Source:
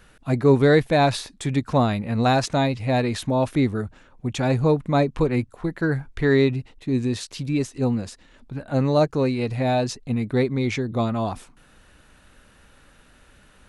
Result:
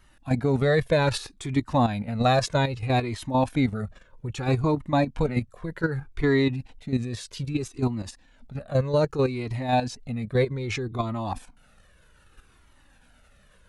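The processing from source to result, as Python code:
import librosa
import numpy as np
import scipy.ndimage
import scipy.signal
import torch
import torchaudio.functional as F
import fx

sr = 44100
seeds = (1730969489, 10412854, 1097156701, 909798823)

y = fx.level_steps(x, sr, step_db=10)
y = fx.comb_cascade(y, sr, direction='falling', hz=0.63)
y = F.gain(torch.from_numpy(y), 5.5).numpy()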